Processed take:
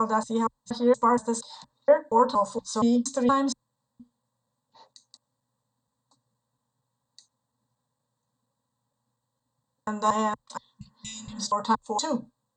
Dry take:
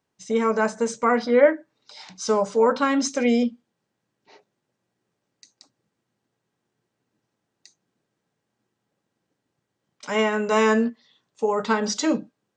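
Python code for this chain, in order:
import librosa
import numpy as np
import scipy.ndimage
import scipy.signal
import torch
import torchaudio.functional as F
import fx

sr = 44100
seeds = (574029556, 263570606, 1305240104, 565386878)

y = fx.block_reorder(x, sr, ms=235.0, group=3)
y = fx.ripple_eq(y, sr, per_octave=1.0, db=11)
y = fx.spec_repair(y, sr, seeds[0], start_s=10.8, length_s=0.6, low_hz=210.0, high_hz=2000.0, source='both')
y = fx.fixed_phaser(y, sr, hz=910.0, stages=4)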